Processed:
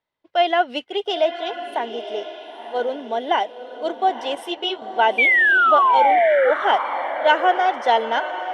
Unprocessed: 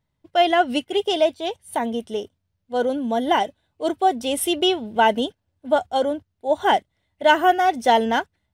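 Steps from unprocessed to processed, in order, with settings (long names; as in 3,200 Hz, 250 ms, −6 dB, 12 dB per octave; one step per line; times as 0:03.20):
0:05.18–0:06.51: sound drawn into the spectrogram fall 480–2,400 Hz −15 dBFS
three-way crossover with the lows and the highs turned down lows −23 dB, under 340 Hz, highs −21 dB, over 5,200 Hz
on a send: feedback delay with all-pass diffusion 958 ms, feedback 41%, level −10.5 dB
0:04.35–0:04.82: on the sum: string-ensemble chorus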